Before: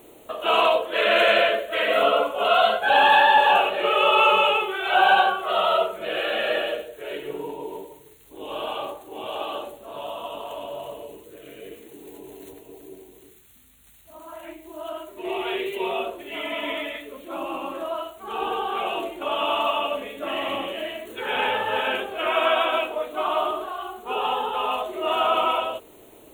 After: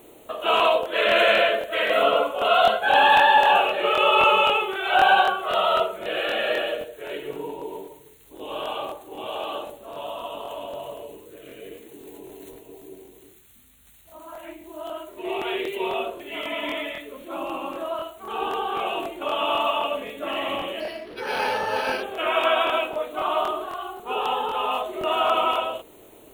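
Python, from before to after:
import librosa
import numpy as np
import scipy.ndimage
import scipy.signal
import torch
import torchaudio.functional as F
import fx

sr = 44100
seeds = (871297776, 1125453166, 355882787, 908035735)

y = fx.buffer_crackle(x, sr, first_s=0.55, period_s=0.26, block=1024, kind='repeat')
y = fx.resample_linear(y, sr, factor=6, at=(20.8, 22.03))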